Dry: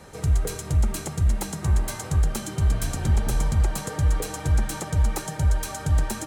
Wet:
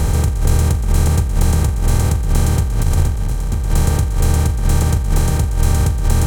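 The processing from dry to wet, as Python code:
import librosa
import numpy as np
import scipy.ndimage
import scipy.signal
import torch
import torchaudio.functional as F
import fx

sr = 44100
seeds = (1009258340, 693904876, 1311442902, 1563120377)

y = fx.bin_compress(x, sr, power=0.2)
y = fx.low_shelf(y, sr, hz=110.0, db=8.5)
y = fx.over_compress(y, sr, threshold_db=-12.0, ratio=-0.5)
y = fx.transformer_sat(y, sr, knee_hz=88.0, at=(3.14, 3.63))
y = y * 10.0 ** (-1.0 / 20.0)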